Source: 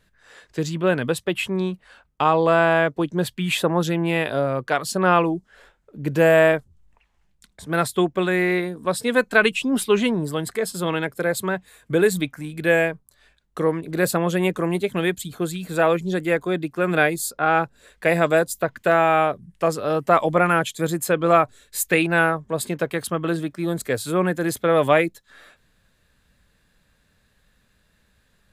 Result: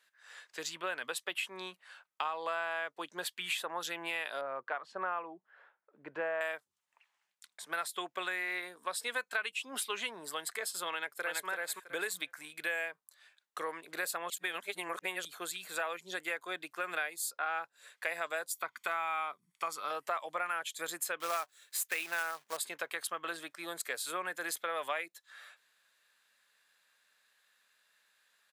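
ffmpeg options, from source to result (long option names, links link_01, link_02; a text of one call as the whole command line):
ffmpeg -i in.wav -filter_complex "[0:a]asettb=1/sr,asplit=3[link_01][link_02][link_03];[link_01]atrim=end=4.414[link_04];[link_02]atrim=start=4.41:end=6.41,asetpts=PTS-STARTPTS,afade=type=in:duration=0.004:curve=qsin,afade=type=out:start_time=1.996:duration=0.004:curve=qsin,lowpass=1400[link_05];[link_03]atrim=start=6.406[link_06];[link_04][link_05]acrossfade=duration=0.004:curve1=hsin:curve2=qsin[link_07];[link_07][link_06]acrossfade=duration=0.004:curve1=qsin:curve2=hsin,asplit=2[link_08][link_09];[link_09]afade=type=in:start_time=10.93:duration=0.01,afade=type=out:start_time=11.46:duration=0.01,aecho=0:1:330|660|990:0.841395|0.126209|0.0189314[link_10];[link_08][link_10]amix=inputs=2:normalize=0,asettb=1/sr,asplit=3[link_11][link_12][link_13];[link_11]atrim=end=18.514[link_14];[link_12]atrim=start=18.51:end=19.91,asetpts=PTS-STARTPTS,afade=type=in:duration=0.004:curve=qsin,afade=type=out:start_time=1.396:duration=0.004:curve=qsin,aecho=1:1:0.9:0.57,atrim=end_sample=61740[link_15];[link_13]atrim=start=19.906[link_16];[link_14][link_15]acrossfade=duration=0.004:curve1=hsin:curve2=qsin[link_17];[link_17][link_16]acrossfade=duration=0.004:curve1=qsin:curve2=hsin,asettb=1/sr,asplit=3[link_18][link_19][link_20];[link_18]atrim=end=21.204[link_21];[link_19]atrim=start=21.2:end=22.57,asetpts=PTS-STARTPTS,afade=type=in:duration=0.004:curve=qsin,afade=type=out:start_time=1.366:duration=0.004:curve=qsin,acrusher=bits=3:mode=log:mix=0:aa=0.000001[link_22];[link_20]atrim=start=22.566[link_23];[link_21][link_22]acrossfade=duration=0.004:curve1=hsin:curve2=qsin[link_24];[link_24][link_23]acrossfade=duration=0.004:curve1=qsin:curve2=hsin,asplit=3[link_25][link_26][link_27];[link_25]atrim=end=14.302[link_28];[link_26]atrim=start=14.298:end=15.252,asetpts=PTS-STARTPTS,areverse[link_29];[link_27]atrim=start=15.248[link_30];[link_28][link_29]acrossfade=duration=0.004:curve1=hsin:curve2=hsin[link_31];[link_31][link_30]acrossfade=duration=0.004:curve1=hsin:curve2=hsin,highpass=1000,acompressor=threshold=-30dB:ratio=4,volume=-3.5dB" out.wav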